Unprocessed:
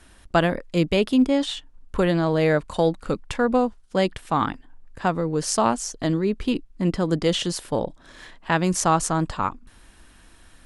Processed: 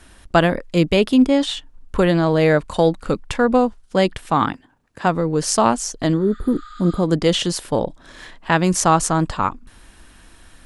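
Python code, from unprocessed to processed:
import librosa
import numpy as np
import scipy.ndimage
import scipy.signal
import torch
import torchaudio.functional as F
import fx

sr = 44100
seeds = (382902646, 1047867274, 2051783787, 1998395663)

y = fx.highpass(x, sr, hz=fx.line((4.34, 63.0), (5.05, 130.0)), slope=12, at=(4.34, 5.05), fade=0.02)
y = fx.spec_repair(y, sr, seeds[0], start_s=6.23, length_s=0.78, low_hz=1200.0, high_hz=9000.0, source='both')
y = y * 10.0 ** (4.5 / 20.0)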